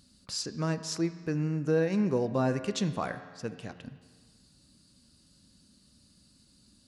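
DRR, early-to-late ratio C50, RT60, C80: 10.0 dB, 12.0 dB, 1.6 s, 13.0 dB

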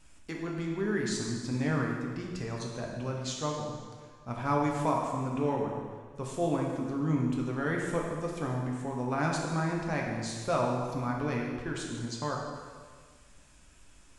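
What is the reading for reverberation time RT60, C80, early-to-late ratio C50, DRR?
1.7 s, 3.5 dB, 1.5 dB, −1.5 dB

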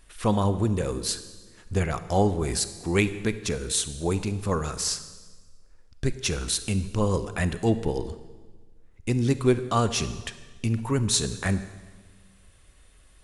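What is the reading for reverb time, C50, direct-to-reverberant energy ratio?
1.4 s, 12.5 dB, 12.0 dB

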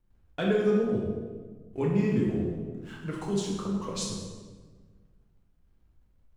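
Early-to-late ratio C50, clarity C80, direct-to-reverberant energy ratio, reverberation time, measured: 1.0 dB, 3.5 dB, −4.0 dB, 1.4 s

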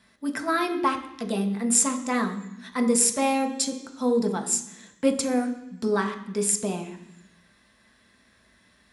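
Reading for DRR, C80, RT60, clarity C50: 3.5 dB, 13.0 dB, 0.85 s, 10.5 dB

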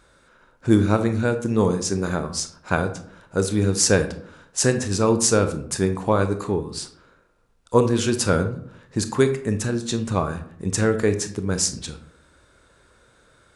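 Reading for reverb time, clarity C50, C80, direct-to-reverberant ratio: 0.70 s, 11.5 dB, 15.0 dB, 8.0 dB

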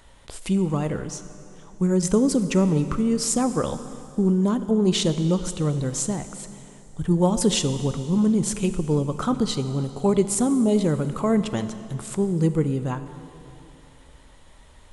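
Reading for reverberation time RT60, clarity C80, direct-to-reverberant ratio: 2.9 s, 12.0 dB, 10.5 dB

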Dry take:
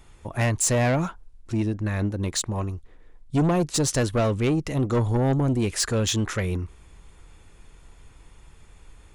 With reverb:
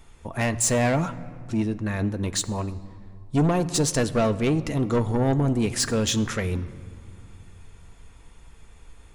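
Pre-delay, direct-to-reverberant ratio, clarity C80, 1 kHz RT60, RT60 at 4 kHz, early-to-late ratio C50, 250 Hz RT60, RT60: 4 ms, 9.5 dB, 17.0 dB, 2.1 s, 1.3 s, 16.5 dB, 2.9 s, 2.1 s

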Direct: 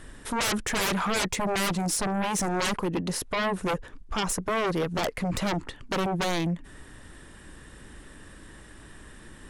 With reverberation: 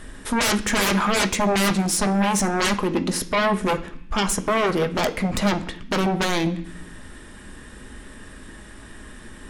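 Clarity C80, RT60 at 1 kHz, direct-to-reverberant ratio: 18.0 dB, 0.70 s, 6.0 dB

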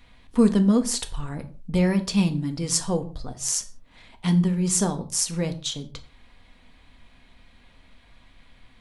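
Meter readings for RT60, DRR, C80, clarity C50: non-exponential decay, 7.0 dB, 19.0 dB, 15.0 dB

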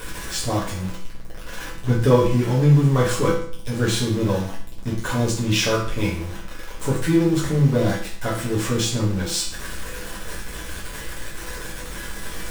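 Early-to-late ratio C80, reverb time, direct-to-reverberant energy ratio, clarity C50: 8.5 dB, 0.55 s, −7.5 dB, 4.5 dB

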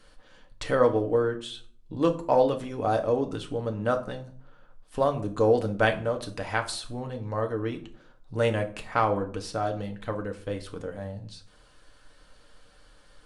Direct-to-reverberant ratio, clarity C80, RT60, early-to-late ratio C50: 3.5 dB, 18.5 dB, 0.50 s, 14.0 dB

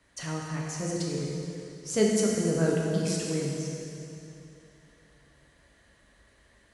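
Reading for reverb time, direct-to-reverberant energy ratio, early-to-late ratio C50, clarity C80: 2.9 s, −3.5 dB, −0.5 dB, 1.0 dB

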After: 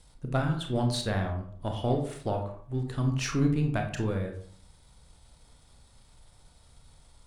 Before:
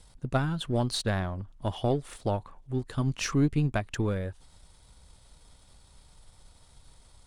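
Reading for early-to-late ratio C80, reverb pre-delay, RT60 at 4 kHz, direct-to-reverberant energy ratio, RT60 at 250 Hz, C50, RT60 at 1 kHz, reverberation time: 11.5 dB, 25 ms, 0.35 s, 3.0 dB, 0.65 s, 8.0 dB, 0.50 s, 0.55 s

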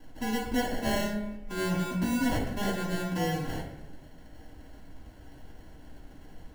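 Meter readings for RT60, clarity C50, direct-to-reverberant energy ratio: 0.90 s, 3.5 dB, −6.0 dB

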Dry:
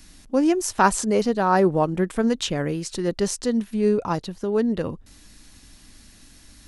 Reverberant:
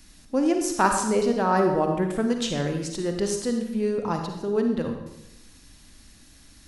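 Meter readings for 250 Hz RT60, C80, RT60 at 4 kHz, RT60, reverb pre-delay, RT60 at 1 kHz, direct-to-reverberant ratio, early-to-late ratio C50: 1.1 s, 7.0 dB, 0.75 s, 0.90 s, 40 ms, 0.80 s, 4.0 dB, 5.0 dB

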